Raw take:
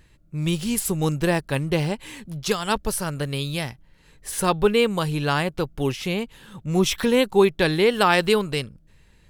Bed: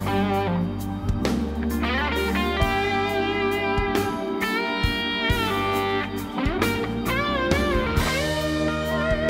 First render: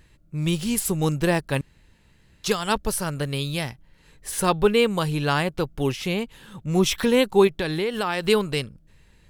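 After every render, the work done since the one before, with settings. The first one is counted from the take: 1.61–2.44 room tone; 7.47–8.28 compressor 3:1, threshold -23 dBFS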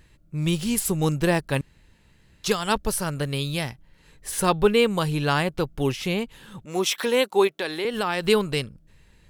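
6.65–7.85 HPF 380 Hz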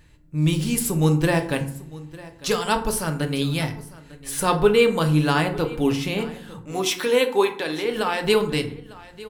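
echo 0.901 s -19.5 dB; FDN reverb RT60 0.57 s, low-frequency decay 1.45×, high-frequency decay 0.55×, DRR 4.5 dB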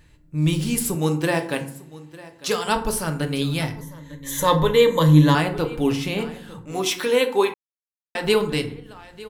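0.95–2.67 Bessel high-pass 210 Hz; 3.81–5.35 ripple EQ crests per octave 1.1, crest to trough 14 dB; 7.54–8.15 mute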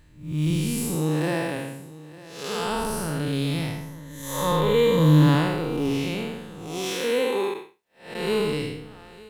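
time blur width 0.232 s; companded quantiser 8-bit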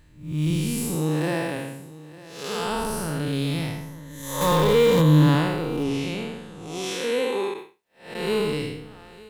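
4.41–5.02 zero-crossing step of -23.5 dBFS; 5.83–7.58 Chebyshev low-pass 9400 Hz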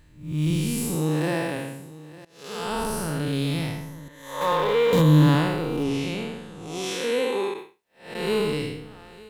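2.25–2.82 fade in, from -20.5 dB; 4.08–4.93 three-band isolator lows -14 dB, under 410 Hz, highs -13 dB, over 3500 Hz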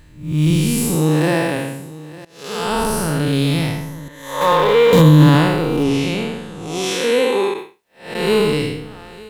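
gain +8.5 dB; limiter -1 dBFS, peak gain reduction 3 dB

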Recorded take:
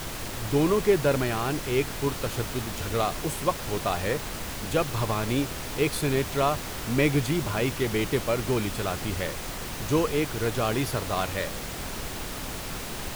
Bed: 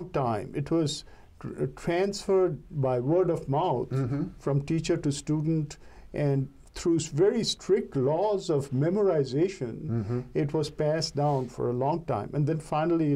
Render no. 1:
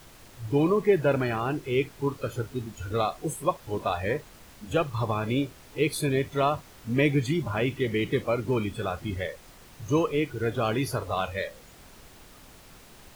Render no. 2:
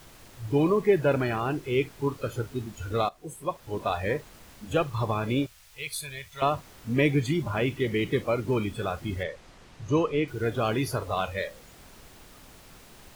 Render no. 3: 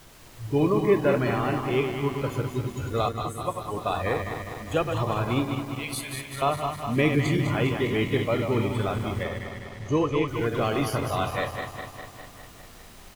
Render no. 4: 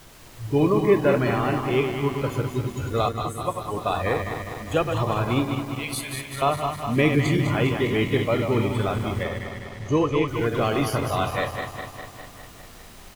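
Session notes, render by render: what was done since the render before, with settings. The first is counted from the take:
noise print and reduce 16 dB
3.09–3.92 fade in, from -15 dB; 5.46–6.42 passive tone stack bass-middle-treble 10-0-10; 9.23–10.28 air absorption 68 m
regenerating reverse delay 0.101 s, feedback 80%, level -6.5 dB; echo 0.203 s -12 dB
gain +2.5 dB

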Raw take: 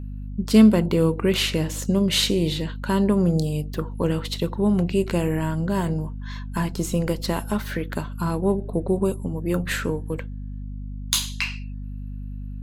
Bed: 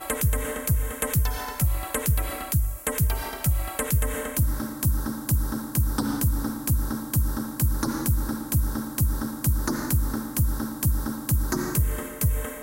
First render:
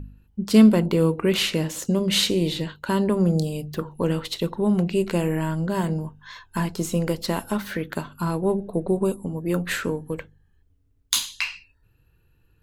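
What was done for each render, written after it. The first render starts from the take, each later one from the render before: de-hum 50 Hz, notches 5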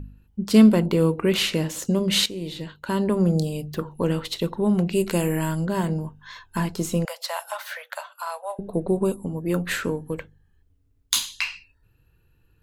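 2.26–3.18 fade in, from -13.5 dB; 4.91–5.64 high shelf 7600 Hz -> 3900 Hz +11 dB; 7.05–8.59 steep high-pass 560 Hz 72 dB/oct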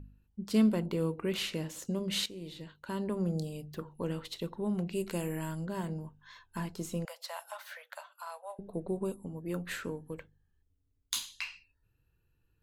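gain -12 dB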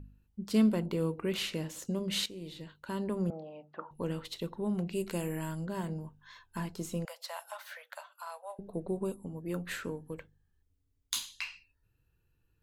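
3.3–3.91 speaker cabinet 400–2300 Hz, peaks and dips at 420 Hz -9 dB, 610 Hz +7 dB, 870 Hz +10 dB, 1300 Hz +7 dB, 2100 Hz -3 dB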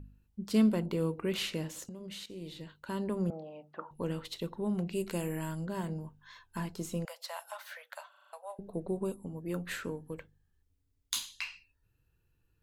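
1.84–2.3 compressor 16:1, threshold -40 dBFS; 8.09 stutter in place 0.04 s, 6 plays

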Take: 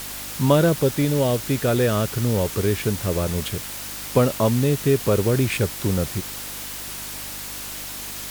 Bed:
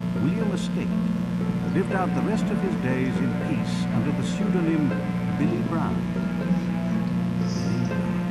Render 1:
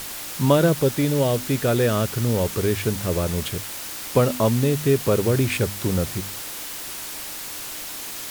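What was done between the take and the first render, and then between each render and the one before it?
de-hum 50 Hz, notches 5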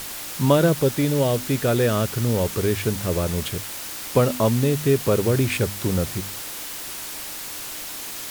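nothing audible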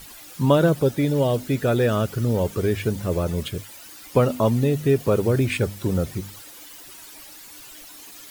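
denoiser 13 dB, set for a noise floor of -34 dBFS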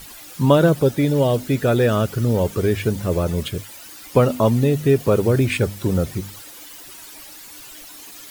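gain +3 dB

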